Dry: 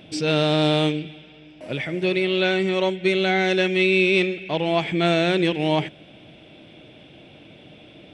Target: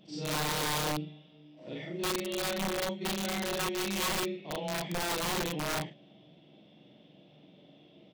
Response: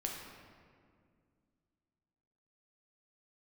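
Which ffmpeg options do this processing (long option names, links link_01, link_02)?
-filter_complex "[0:a]afftfilt=real='re':imag='-im':win_size=4096:overlap=0.75,highpass=140,equalizer=frequency=180:width_type=q:width=4:gain=9,equalizer=frequency=1500:width_type=q:width=4:gain=-9,equalizer=frequency=2400:width_type=q:width=4:gain=-9,lowpass=frequency=6300:width=0.5412,lowpass=frequency=6300:width=1.3066,asplit=2[link_01][link_02];[link_02]adelay=14,volume=-9.5dB[link_03];[link_01][link_03]amix=inputs=2:normalize=0,aeval=exprs='(mod(8.91*val(0)+1,2)-1)/8.91':channel_layout=same,volume=-7.5dB"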